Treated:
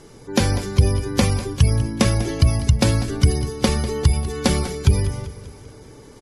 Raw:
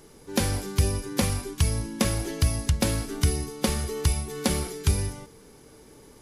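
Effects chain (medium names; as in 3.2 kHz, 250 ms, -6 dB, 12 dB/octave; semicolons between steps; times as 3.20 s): spectral gate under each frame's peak -30 dB strong; low-pass 8.9 kHz 12 dB/octave; peaking EQ 120 Hz +9.5 dB 0.21 oct; feedback delay 196 ms, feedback 54%, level -15 dB; trim +6.5 dB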